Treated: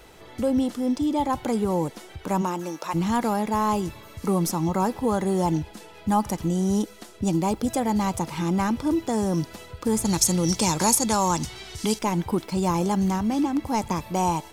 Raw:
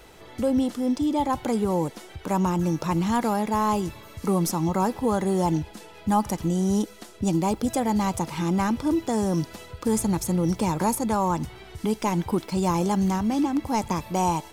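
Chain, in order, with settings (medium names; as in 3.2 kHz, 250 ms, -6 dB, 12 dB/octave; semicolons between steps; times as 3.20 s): 2.41–2.93 s: high-pass 230 Hz -> 630 Hz 12 dB/octave; 10.05–11.99 s: peaking EQ 6 kHz +15 dB 2.1 oct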